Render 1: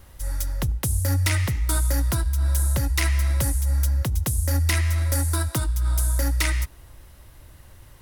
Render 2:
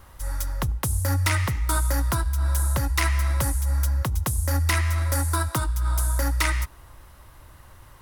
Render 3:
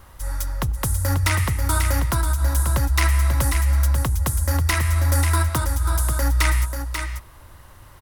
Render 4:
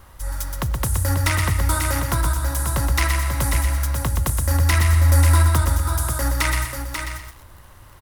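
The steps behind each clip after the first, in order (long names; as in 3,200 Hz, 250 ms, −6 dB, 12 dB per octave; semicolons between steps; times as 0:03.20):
parametric band 1,100 Hz +9 dB 1.1 octaves; level −1.5 dB
single-tap delay 539 ms −6.5 dB; level +2 dB
feedback echo at a low word length 123 ms, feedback 35%, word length 7 bits, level −5 dB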